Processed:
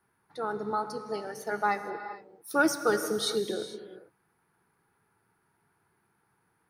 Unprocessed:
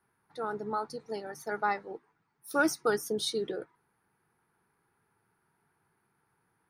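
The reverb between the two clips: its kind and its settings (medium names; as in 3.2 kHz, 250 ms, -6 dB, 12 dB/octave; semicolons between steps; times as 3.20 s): gated-style reverb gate 480 ms flat, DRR 8.5 dB; trim +2 dB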